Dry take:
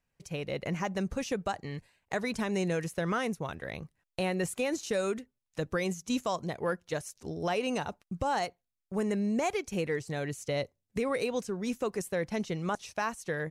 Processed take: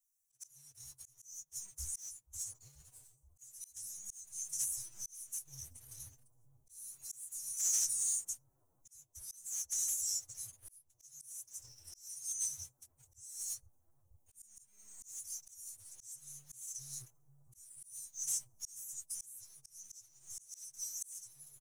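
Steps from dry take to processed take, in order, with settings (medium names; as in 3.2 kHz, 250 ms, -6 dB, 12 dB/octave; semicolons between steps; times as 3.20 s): saturation -25 dBFS, distortion -17 dB; bass shelf 62 Hz +7 dB; chorus voices 4, 0.44 Hz, delay 11 ms, depth 4.6 ms; Chebyshev band-stop 130–5900 Hz, order 5; tilt EQ +4.5 dB/octave; comb 3 ms, depth 88%; de-esser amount 65%; waveshaping leveller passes 2; on a send: bucket-brigade echo 300 ms, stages 2048, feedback 85%, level -15 dB; on the sum: time stretch by phase-locked vocoder 1.6×; slow attack 596 ms; loudspeaker Doppler distortion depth 0.37 ms; trim +1.5 dB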